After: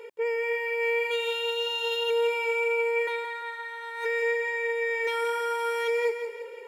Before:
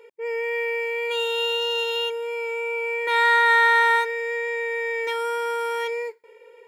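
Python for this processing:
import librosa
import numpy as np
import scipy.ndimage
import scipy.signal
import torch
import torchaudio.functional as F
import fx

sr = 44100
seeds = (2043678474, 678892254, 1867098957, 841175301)

y = fx.low_shelf(x, sr, hz=400.0, db=4.0, at=(4.32, 4.9))
y = fx.over_compress(y, sr, threshold_db=-30.0, ratio=-1.0)
y = fx.echo_feedback(y, sr, ms=172, feedback_pct=44, wet_db=-8.0)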